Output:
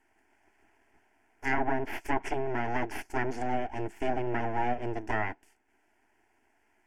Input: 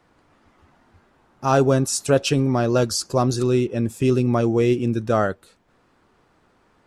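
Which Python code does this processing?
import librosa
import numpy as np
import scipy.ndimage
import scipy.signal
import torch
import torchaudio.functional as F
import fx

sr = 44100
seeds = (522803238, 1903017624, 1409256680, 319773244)

y = np.abs(x)
y = fx.low_shelf(y, sr, hz=81.0, db=-8.5)
y = fx.env_lowpass_down(y, sr, base_hz=1200.0, full_db=-15.0)
y = fx.fixed_phaser(y, sr, hz=790.0, stages=8)
y = y * 10.0 ** (-3.0 / 20.0)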